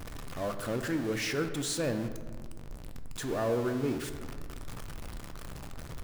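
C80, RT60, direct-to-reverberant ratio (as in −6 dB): 10.5 dB, 1.7 s, 7.0 dB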